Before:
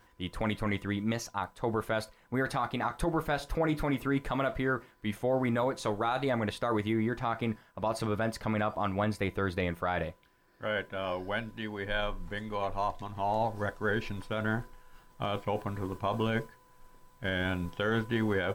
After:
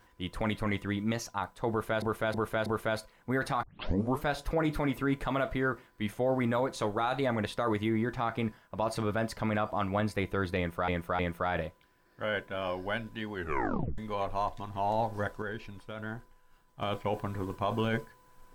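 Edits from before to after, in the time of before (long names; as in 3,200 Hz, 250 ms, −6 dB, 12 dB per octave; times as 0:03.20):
0:01.70–0:02.02: repeat, 4 plays
0:02.67: tape start 0.60 s
0:09.61–0:09.92: repeat, 3 plays
0:11.76: tape stop 0.64 s
0:13.84–0:15.24: clip gain −8 dB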